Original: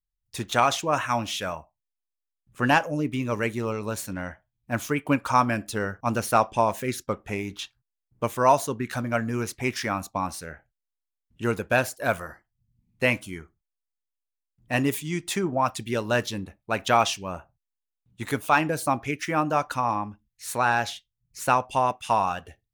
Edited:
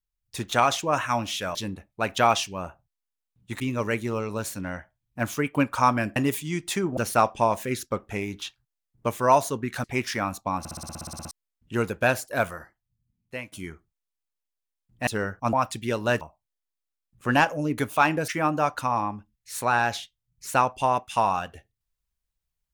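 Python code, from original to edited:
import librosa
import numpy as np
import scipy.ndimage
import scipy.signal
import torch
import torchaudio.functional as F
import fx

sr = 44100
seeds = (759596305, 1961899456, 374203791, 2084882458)

y = fx.edit(x, sr, fx.swap(start_s=1.55, length_s=1.57, other_s=16.25, other_length_s=2.05),
    fx.swap(start_s=5.68, length_s=0.46, other_s=14.76, other_length_s=0.81),
    fx.cut(start_s=9.01, length_s=0.52),
    fx.stutter_over(start_s=10.28, slice_s=0.06, count=12),
    fx.fade_out_to(start_s=12.08, length_s=1.13, floor_db=-19.0),
    fx.cut(start_s=18.8, length_s=0.41), tone=tone)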